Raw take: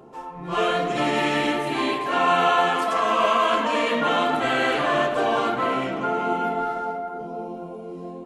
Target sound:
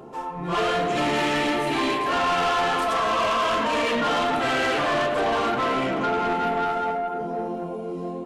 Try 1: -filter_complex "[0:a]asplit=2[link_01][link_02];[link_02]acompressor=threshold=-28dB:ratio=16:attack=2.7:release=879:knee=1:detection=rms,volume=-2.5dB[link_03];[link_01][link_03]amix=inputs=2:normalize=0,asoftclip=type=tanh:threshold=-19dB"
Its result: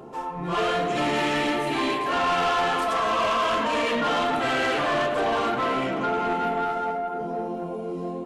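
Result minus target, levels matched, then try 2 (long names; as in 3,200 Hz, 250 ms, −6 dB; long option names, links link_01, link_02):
downward compressor: peak gain reduction +9.5 dB
-filter_complex "[0:a]asplit=2[link_01][link_02];[link_02]acompressor=threshold=-18dB:ratio=16:attack=2.7:release=879:knee=1:detection=rms,volume=-2.5dB[link_03];[link_01][link_03]amix=inputs=2:normalize=0,asoftclip=type=tanh:threshold=-19dB"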